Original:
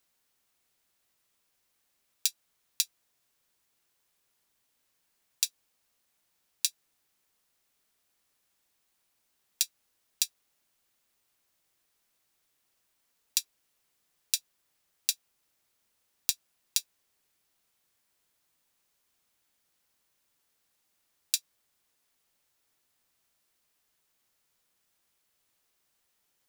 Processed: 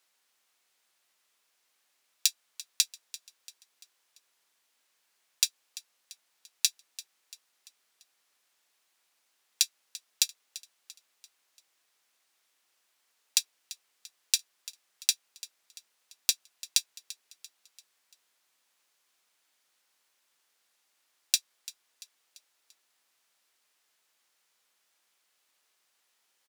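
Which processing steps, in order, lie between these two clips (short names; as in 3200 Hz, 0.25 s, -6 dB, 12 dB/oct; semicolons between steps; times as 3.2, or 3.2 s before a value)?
weighting filter A; feedback echo 0.341 s, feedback 48%, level -17.5 dB; gain +3.5 dB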